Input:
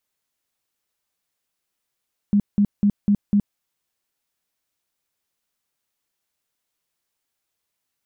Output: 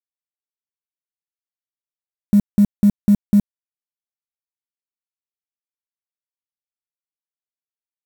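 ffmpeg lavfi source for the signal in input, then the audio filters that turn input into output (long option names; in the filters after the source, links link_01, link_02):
-f lavfi -i "aevalsrc='0.224*sin(2*PI*204*mod(t,0.25))*lt(mod(t,0.25),14/204)':duration=1.25:sample_rate=44100"
-af "acontrast=46,acrusher=bits=5:mix=0:aa=0.000001"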